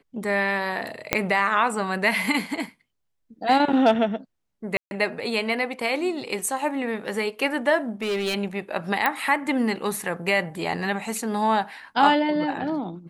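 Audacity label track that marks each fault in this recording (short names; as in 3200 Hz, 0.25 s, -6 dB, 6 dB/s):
1.130000	1.130000	pop -3 dBFS
4.770000	4.910000	gap 0.141 s
7.890000	8.350000	clipped -22 dBFS
9.060000	9.060000	pop -8 dBFS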